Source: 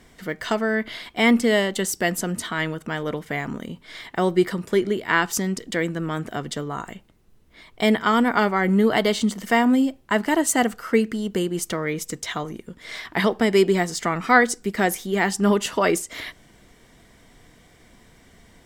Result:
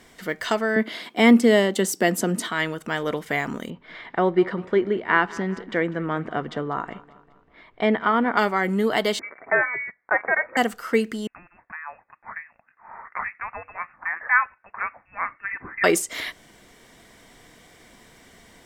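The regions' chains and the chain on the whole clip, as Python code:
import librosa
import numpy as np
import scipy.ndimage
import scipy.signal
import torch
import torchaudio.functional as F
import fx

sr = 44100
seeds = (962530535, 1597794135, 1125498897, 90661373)

y = fx.chain(x, sr, fx.highpass(hz=180.0, slope=24),
    fx.low_shelf(hz=490.0, db=11.5), at=(0.76, 2.48))
y = fx.chain(y, sr, fx.lowpass(hz=2000.0, slope=12),
    fx.echo_feedback(ms=197, feedback_pct=52, wet_db=-19.5), at=(3.7, 8.37))
y = fx.chain(y, sr, fx.highpass(hz=700.0, slope=12),
    fx.leveller(passes=1),
    fx.freq_invert(carrier_hz=2500), at=(9.19, 10.57))
y = fx.chain(y, sr, fx.ladder_highpass(hz=950.0, resonance_pct=40),
    fx.freq_invert(carrier_hz=3000), at=(11.27, 15.84))
y = fx.low_shelf(y, sr, hz=190.0, db=-10.0)
y = fx.rider(y, sr, range_db=4, speed_s=2.0)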